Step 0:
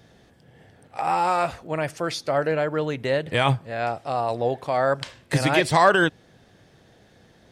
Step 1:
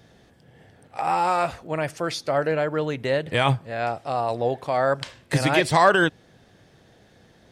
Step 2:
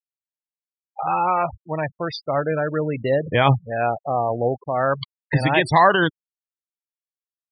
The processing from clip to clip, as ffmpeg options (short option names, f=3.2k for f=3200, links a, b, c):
-af anull
-af "aphaser=in_gain=1:out_gain=1:delay=1.1:decay=0.28:speed=0.27:type=sinusoidal,afftdn=nr=18:nf=-33,afftfilt=real='re*gte(hypot(re,im),0.0501)':imag='im*gte(hypot(re,im),0.0501)':win_size=1024:overlap=0.75,volume=2dB"